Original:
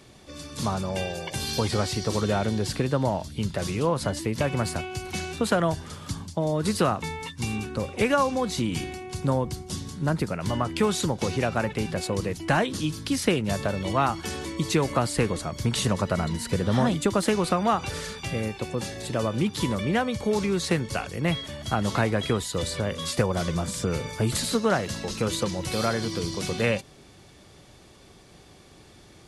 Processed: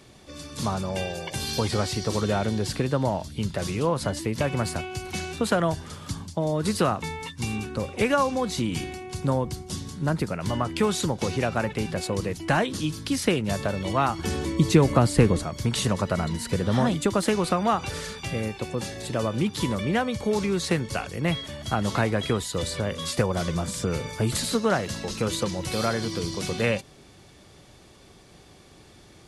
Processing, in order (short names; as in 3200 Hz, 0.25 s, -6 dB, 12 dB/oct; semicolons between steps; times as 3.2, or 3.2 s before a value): 14.19–15.44 low shelf 470 Hz +8.5 dB